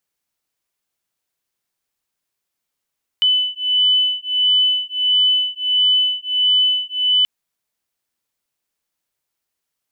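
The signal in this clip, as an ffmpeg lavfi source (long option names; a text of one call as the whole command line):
ffmpeg -f lavfi -i "aevalsrc='0.141*(sin(2*PI*3000*t)+sin(2*PI*3001.5*t))':duration=4.03:sample_rate=44100" out.wav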